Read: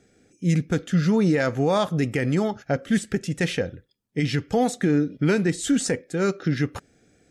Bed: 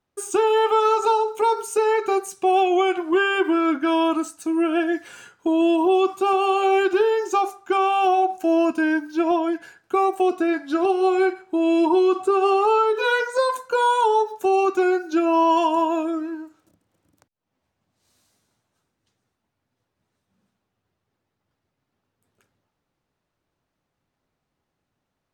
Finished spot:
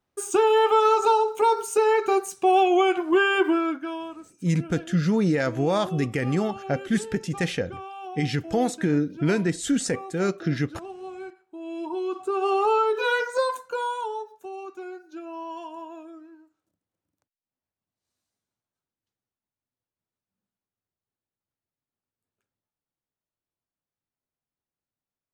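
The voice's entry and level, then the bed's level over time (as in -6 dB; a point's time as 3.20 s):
4.00 s, -2.0 dB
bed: 3.48 s -0.5 dB
4.17 s -19 dB
11.50 s -19 dB
12.62 s -3 dB
13.40 s -3 dB
14.50 s -18.5 dB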